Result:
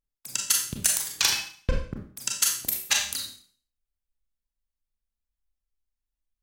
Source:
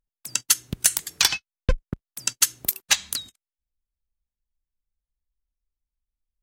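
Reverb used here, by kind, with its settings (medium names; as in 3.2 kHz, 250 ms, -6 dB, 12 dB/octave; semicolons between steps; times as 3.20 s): Schroeder reverb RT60 0.47 s, combs from 28 ms, DRR 0 dB; trim -5 dB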